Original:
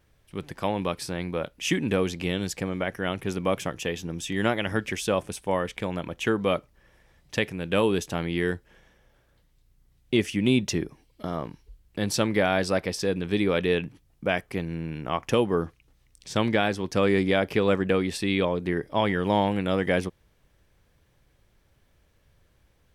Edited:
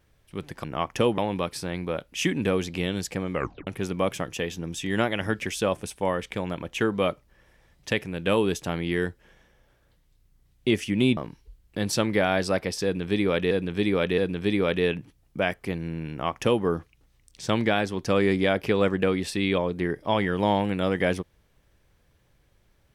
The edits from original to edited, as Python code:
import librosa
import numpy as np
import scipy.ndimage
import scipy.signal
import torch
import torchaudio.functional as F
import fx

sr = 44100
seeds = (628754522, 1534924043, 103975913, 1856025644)

y = fx.edit(x, sr, fx.tape_stop(start_s=2.79, length_s=0.34),
    fx.cut(start_s=10.63, length_s=0.75),
    fx.repeat(start_s=13.05, length_s=0.67, count=3),
    fx.duplicate(start_s=14.97, length_s=0.54, to_s=0.64), tone=tone)